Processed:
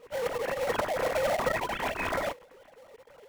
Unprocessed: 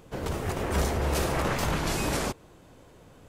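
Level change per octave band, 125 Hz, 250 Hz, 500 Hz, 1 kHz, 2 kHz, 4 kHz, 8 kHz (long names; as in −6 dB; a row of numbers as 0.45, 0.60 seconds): −15.0, −9.5, +2.5, +0.5, +1.0, −4.0, −9.0 decibels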